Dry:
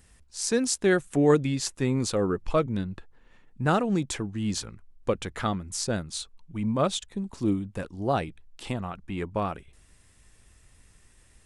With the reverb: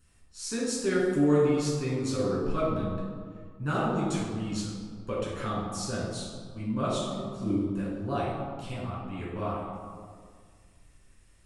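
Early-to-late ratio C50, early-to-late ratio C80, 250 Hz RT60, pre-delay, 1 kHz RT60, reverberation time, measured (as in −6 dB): −0.5 dB, 2.0 dB, 2.2 s, 7 ms, 1.8 s, 1.9 s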